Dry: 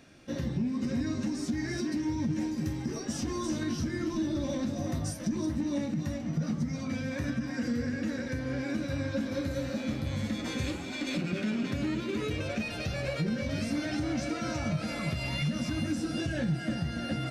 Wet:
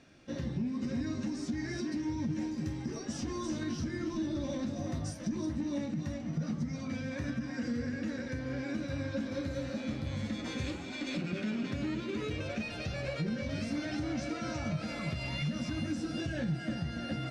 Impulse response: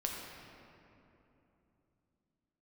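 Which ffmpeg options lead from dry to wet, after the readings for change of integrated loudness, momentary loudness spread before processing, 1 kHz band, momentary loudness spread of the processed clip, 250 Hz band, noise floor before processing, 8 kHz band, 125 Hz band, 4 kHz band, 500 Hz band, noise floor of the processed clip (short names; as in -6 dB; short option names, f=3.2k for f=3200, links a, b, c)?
-3.5 dB, 2 LU, -3.5 dB, 3 LU, -3.5 dB, -38 dBFS, -5.5 dB, -3.5 dB, -4.0 dB, -3.5 dB, -41 dBFS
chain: -af "lowpass=7.4k,volume=-3.5dB"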